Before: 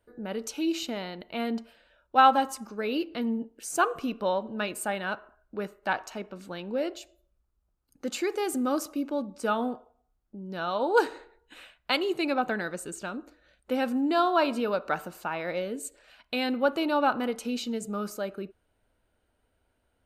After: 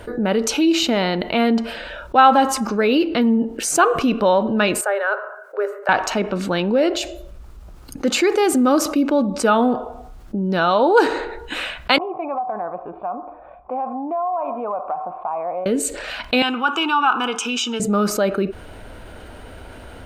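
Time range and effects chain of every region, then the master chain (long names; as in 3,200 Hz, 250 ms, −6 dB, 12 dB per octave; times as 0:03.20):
0:04.81–0:05.89: Chebyshev high-pass with heavy ripple 390 Hz, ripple 9 dB + parametric band 3,300 Hz −12.5 dB 1.7 octaves
0:11.98–0:15.66: formant resonators in series a + downward compressor 4 to 1, threshold −41 dBFS
0:16.42–0:17.80: high-pass filter 550 Hz + phaser with its sweep stopped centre 2,900 Hz, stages 8
whole clip: high-shelf EQ 8,100 Hz −11 dB; envelope flattener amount 50%; level +6.5 dB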